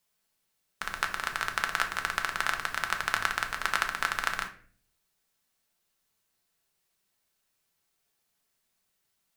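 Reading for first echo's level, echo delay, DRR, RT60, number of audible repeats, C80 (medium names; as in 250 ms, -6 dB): no echo, no echo, 4.0 dB, 0.45 s, no echo, 16.0 dB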